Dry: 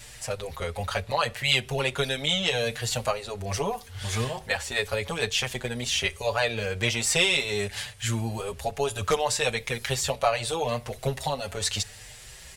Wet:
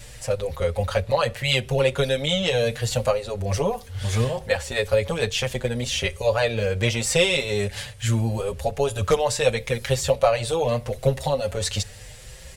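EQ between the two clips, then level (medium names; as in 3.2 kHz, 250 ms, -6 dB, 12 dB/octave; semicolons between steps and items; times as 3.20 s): bass shelf 280 Hz +8.5 dB; peaking EQ 530 Hz +11 dB 0.24 oct; 0.0 dB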